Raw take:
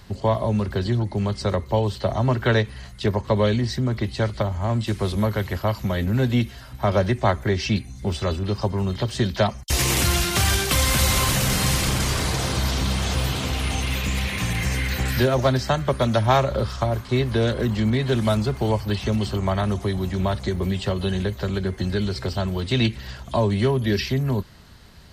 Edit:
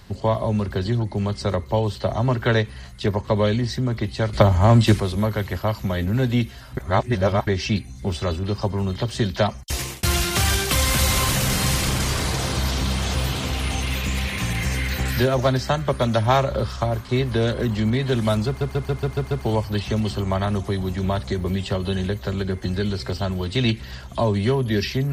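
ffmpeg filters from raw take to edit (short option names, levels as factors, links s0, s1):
-filter_complex "[0:a]asplit=12[s0][s1][s2][s3][s4][s5][s6][s7][s8][s9][s10][s11];[s0]atrim=end=4.332[s12];[s1]atrim=start=4.328:end=5.002,asetpts=PTS-STARTPTS,volume=2.82[s13];[s2]atrim=start=4.998:end=6.772[s14];[s3]atrim=start=6.768:end=7.472,asetpts=PTS-STARTPTS,areverse[s15];[s4]atrim=start=7.468:end=10.03,asetpts=PTS-STARTPTS,afade=t=out:st=2.092:d=0.47[s16];[s5]atrim=start=10.03:end=18.612,asetpts=PTS-STARTPTS,afade=t=in:d=0.004:c=hsin[s17];[s6]atrim=start=18.468:end=18.612[s18];[s7]atrim=start=18.468:end=18.612[s19];[s8]atrim=start=18.468:end=18.612[s20];[s9]atrim=start=18.468:end=18.612[s21];[s10]atrim=start=18.468:end=18.612[s22];[s11]atrim=start=18.468[s23];[s12][s13]acrossfade=d=0.004:c1=hsin:c2=hsin[s24];[s24][s14]acrossfade=d=0.004:c1=hsin:c2=hsin[s25];[s25][s15]acrossfade=d=0.004:c1=hsin:c2=hsin[s26];[s16][s17]concat=n=2:v=0:a=1[s27];[s26][s27]acrossfade=d=0.004:c1=hsin:c2=hsin[s28];[s28][s18]acrossfade=d=0.004:c1=hsin:c2=hsin[s29];[s29][s19]acrossfade=d=0.004:c1=hsin:c2=hsin[s30];[s30][s20]acrossfade=d=0.004:c1=hsin:c2=hsin[s31];[s31][s21]acrossfade=d=0.004:c1=hsin:c2=hsin[s32];[s32][s22]acrossfade=d=0.004:c1=hsin:c2=hsin[s33];[s33][s23]acrossfade=d=0.004:c1=hsin:c2=hsin"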